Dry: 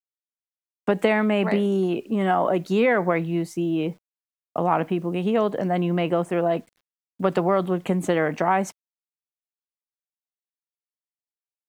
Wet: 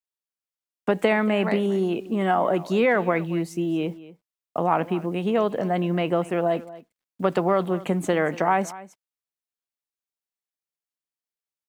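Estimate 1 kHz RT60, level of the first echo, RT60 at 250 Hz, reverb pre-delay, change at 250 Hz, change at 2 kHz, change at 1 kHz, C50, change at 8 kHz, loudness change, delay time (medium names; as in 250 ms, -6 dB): no reverb, -18.0 dB, no reverb, no reverb, -1.0 dB, 0.0 dB, 0.0 dB, no reverb, 0.0 dB, -0.5 dB, 233 ms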